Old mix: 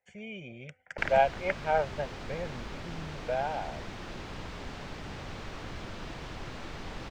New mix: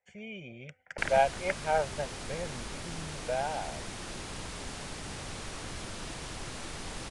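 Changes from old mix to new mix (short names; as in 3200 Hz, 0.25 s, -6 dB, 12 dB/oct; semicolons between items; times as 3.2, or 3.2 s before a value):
background: remove air absorption 160 m; master: add elliptic low-pass 10000 Hz, stop band 40 dB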